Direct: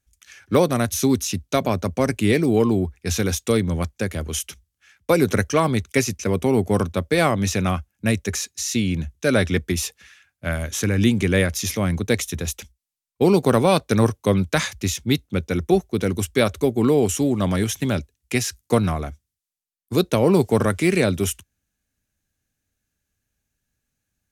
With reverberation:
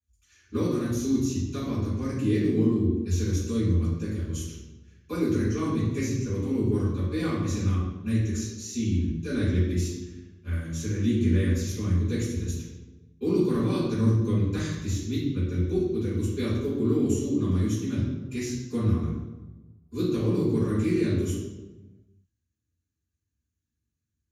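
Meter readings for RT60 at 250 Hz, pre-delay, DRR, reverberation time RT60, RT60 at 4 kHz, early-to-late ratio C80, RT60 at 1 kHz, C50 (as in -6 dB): 1.3 s, 3 ms, -13.5 dB, 1.2 s, 0.75 s, 3.0 dB, 1.0 s, 0.0 dB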